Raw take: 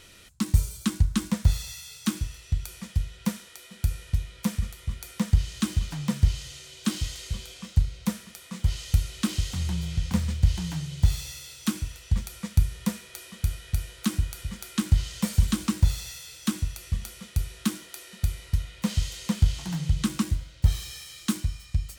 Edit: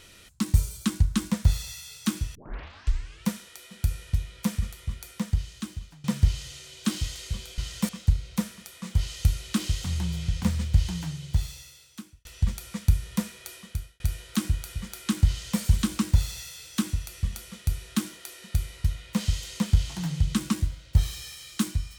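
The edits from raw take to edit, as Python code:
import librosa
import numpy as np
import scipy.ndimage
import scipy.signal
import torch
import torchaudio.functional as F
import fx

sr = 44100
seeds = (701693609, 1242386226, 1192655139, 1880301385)

y = fx.edit(x, sr, fx.tape_start(start_s=2.35, length_s=0.92),
    fx.fade_out_to(start_s=4.76, length_s=1.28, floor_db=-21.0),
    fx.fade_out_span(start_s=10.53, length_s=1.41),
    fx.fade_out_span(start_s=13.23, length_s=0.46),
    fx.duplicate(start_s=14.98, length_s=0.31, to_s=7.58), tone=tone)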